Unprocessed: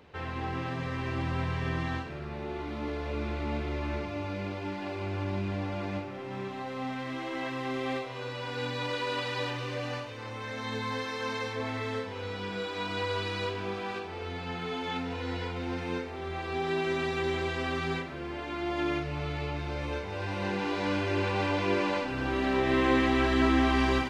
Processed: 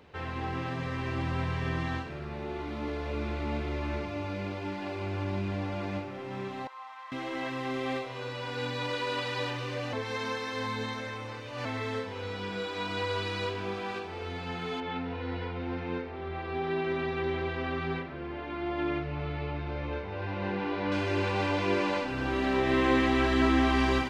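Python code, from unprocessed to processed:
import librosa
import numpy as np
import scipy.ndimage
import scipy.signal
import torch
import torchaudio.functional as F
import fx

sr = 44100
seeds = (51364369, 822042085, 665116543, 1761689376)

y = fx.ladder_highpass(x, sr, hz=890.0, resonance_pct=70, at=(6.67, 7.12))
y = fx.air_absorb(y, sr, metres=240.0, at=(14.8, 20.92))
y = fx.edit(y, sr, fx.reverse_span(start_s=9.93, length_s=1.72), tone=tone)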